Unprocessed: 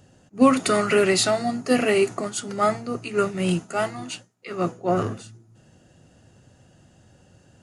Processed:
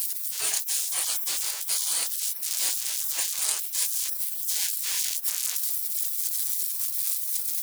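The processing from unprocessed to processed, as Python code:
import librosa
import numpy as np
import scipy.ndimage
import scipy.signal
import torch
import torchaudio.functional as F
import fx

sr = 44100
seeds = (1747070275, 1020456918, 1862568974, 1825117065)

p1 = x + 0.5 * 10.0 ** (-24.5 / 20.0) * np.sign(x)
p2 = fx.spec_gate(p1, sr, threshold_db=-30, keep='weak')
p3 = fx.bass_treble(p2, sr, bass_db=-15, treble_db=15)
p4 = fx.rider(p3, sr, range_db=10, speed_s=0.5)
y = p4 + fx.echo_filtered(p4, sr, ms=370, feedback_pct=76, hz=2000.0, wet_db=-20.5, dry=0)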